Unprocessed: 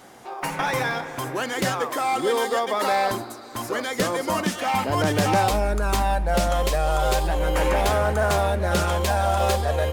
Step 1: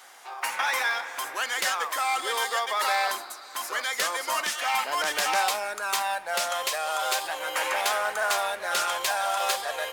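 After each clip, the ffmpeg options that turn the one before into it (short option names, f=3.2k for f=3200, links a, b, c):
-af "highpass=1.1k,volume=2dB"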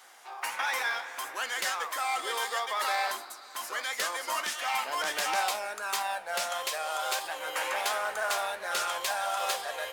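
-af "flanger=delay=8.6:depth=9.6:regen=72:speed=1.5:shape=triangular"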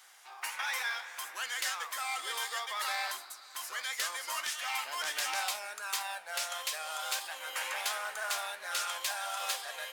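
-af "tiltshelf=f=820:g=-7.5,volume=-8.5dB"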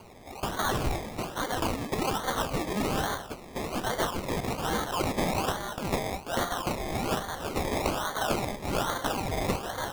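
-filter_complex "[0:a]asplit=2[a][b];[b]alimiter=level_in=1.5dB:limit=-24dB:level=0:latency=1:release=368,volume=-1.5dB,volume=-1.5dB[c];[a][c]amix=inputs=2:normalize=0,acrusher=samples=24:mix=1:aa=0.000001:lfo=1:lforange=14.4:lforate=1.2,volume=2.5dB"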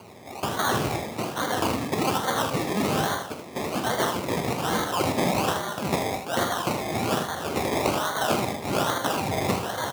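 -af "highpass=f=91:w=0.5412,highpass=f=91:w=1.3066,aecho=1:1:45|79:0.316|0.398,volume=3.5dB"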